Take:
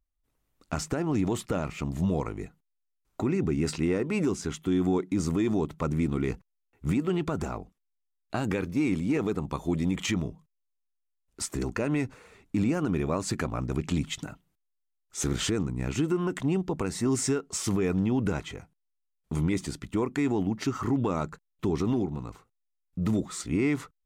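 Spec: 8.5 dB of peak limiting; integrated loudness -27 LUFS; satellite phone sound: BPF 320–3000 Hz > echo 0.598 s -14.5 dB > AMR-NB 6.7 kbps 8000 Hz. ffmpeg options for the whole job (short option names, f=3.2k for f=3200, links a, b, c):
-af "alimiter=level_in=2dB:limit=-24dB:level=0:latency=1,volume=-2dB,highpass=320,lowpass=3k,aecho=1:1:598:0.188,volume=14dB" -ar 8000 -c:a libopencore_amrnb -b:a 6700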